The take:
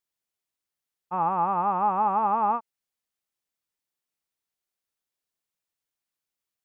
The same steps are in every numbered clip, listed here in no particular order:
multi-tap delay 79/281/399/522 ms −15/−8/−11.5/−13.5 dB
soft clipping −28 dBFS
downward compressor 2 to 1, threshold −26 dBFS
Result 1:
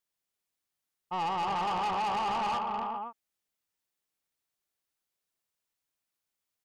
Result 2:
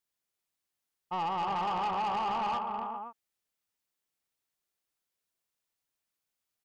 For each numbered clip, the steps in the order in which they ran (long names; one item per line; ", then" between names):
multi-tap delay, then soft clipping, then downward compressor
downward compressor, then multi-tap delay, then soft clipping